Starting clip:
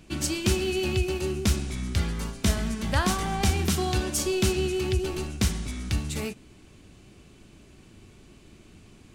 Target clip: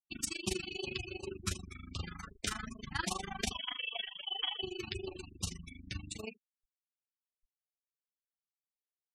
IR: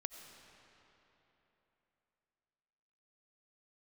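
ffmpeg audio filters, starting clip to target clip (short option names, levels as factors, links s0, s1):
-filter_complex "[0:a]lowshelf=f=450:g=-10.5,asettb=1/sr,asplit=3[s0][s1][s2];[s0]atrim=end=3.514[s3];[s1]atrim=start=3.51:end=4.63,asetpts=PTS-STARTPTS,afade=t=in:d=0.004:c=qsin,afade=t=out:st=1.116:d=0.004:c=qsin,lowpass=f=2900:t=q:w=0.5098,lowpass=f=2900:t=q:w=0.6013,lowpass=f=2900:t=q:w=0.9,lowpass=f=2900:t=q:w=2.563,afreqshift=-3400[s4];[s2]atrim=start=4.626[s5];[s3][s4]acrossfade=d=0.004:c1=hsin:c2=qsin[s6];[s6][s5]acrossfade=d=0.004:c1=qsin:c2=hsin,bandreject=f=91.89:t=h:w=4,bandreject=f=183.78:t=h:w=4,bandreject=f=275.67:t=h:w=4,bandreject=f=367.56:t=h:w=4,bandreject=f=459.45:t=h:w=4,bandreject=f=551.34:t=h:w=4,bandreject=f=643.23:t=h:w=4,bandreject=f=735.12:t=h:w=4,bandreject=f=827.01:t=h:w=4,bandreject=f=918.9:t=h:w=4,bandreject=f=1010.79:t=h:w=4,asettb=1/sr,asplit=3[s7][s8][s9];[s7]atrim=end=1.274[s10];[s8]atrim=start=1.27:end=2.71,asetpts=PTS-STARTPTS,afade=t=in:d=0.004:c=qsin,afade=t=out:st=1.436:d=0.004:c=qsin,equalizer=f=1300:t=o:w=0.47:g=8.5[s11];[s9]atrim=start=2.706[s12];[s10][s11]acrossfade=d=0.004:c1=hsin:c2=qsin[s13];[s13][s12]acrossfade=d=0.004:c1=qsin:c2=hsin,aecho=1:1:77:0.2,tremolo=f=25:d=0.974,anlmdn=0.00398,flanger=delay=4:depth=7.5:regen=37:speed=0.27:shape=sinusoidal,afftfilt=real='re*gte(hypot(re,im),0.00794)':imag='im*gte(hypot(re,im),0.00794)':win_size=1024:overlap=0.75,afftfilt=real='re*(1-between(b*sr/1024,460*pow(1900/460,0.5+0.5*sin(2*PI*2.6*pts/sr))/1.41,460*pow(1900/460,0.5+0.5*sin(2*PI*2.6*pts/sr))*1.41))':imag='im*(1-between(b*sr/1024,460*pow(1900/460,0.5+0.5*sin(2*PI*2.6*pts/sr))/1.41,460*pow(1900/460,0.5+0.5*sin(2*PI*2.6*pts/sr))*1.41))':win_size=1024:overlap=0.75,volume=1.12"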